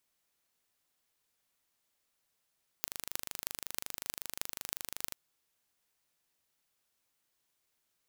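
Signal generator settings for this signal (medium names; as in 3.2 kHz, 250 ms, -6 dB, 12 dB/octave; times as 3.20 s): pulse train 25.4 per s, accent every 8, -5.5 dBFS 2.31 s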